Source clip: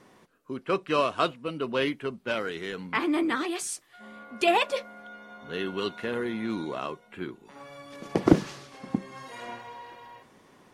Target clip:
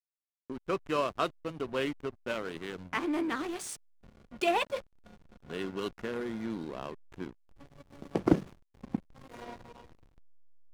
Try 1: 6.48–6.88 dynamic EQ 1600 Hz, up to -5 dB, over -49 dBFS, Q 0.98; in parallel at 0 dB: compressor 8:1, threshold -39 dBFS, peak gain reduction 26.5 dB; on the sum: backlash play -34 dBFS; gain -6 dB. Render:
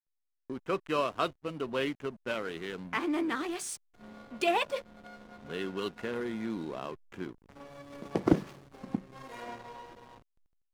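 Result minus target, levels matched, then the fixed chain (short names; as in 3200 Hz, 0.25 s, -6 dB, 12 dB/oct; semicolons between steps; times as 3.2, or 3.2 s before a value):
backlash: distortion -5 dB
6.48–6.88 dynamic EQ 1600 Hz, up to -5 dB, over -49 dBFS, Q 0.98; in parallel at 0 dB: compressor 8:1, threshold -39 dBFS, peak gain reduction 26.5 dB; on the sum: backlash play -28 dBFS; gain -6 dB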